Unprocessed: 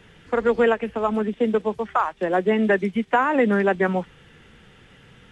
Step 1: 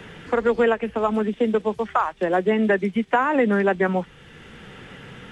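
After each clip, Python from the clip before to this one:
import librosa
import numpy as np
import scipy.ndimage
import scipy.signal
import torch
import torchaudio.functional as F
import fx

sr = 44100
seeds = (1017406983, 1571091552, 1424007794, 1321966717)

y = fx.band_squash(x, sr, depth_pct=40)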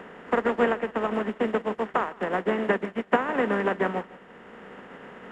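y = fx.bin_compress(x, sr, power=0.4)
y = fx.echo_feedback(y, sr, ms=159, feedback_pct=43, wet_db=-10.5)
y = fx.upward_expand(y, sr, threshold_db=-26.0, expansion=2.5)
y = F.gain(torch.from_numpy(y), -5.0).numpy()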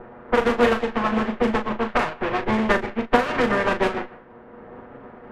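y = fx.lower_of_two(x, sr, delay_ms=8.3)
y = fx.doubler(y, sr, ms=37.0, db=-8.0)
y = fx.env_lowpass(y, sr, base_hz=840.0, full_db=-20.0)
y = F.gain(torch.from_numpy(y), 5.0).numpy()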